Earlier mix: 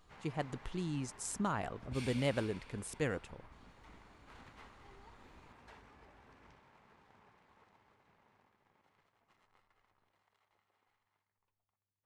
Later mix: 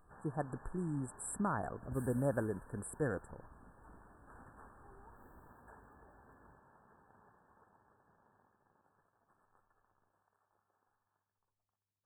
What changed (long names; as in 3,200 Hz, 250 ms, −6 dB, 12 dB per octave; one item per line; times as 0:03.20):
second sound: remove low-pass filter 10,000 Hz 24 dB per octave
master: add linear-phase brick-wall band-stop 1,800–7,500 Hz